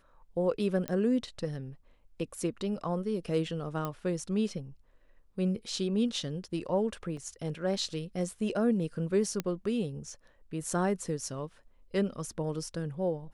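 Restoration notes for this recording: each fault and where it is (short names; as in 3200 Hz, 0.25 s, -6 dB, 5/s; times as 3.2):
0.88 pop -18 dBFS
3.85 pop -20 dBFS
7.17 gap 2.8 ms
9.4 pop -17 dBFS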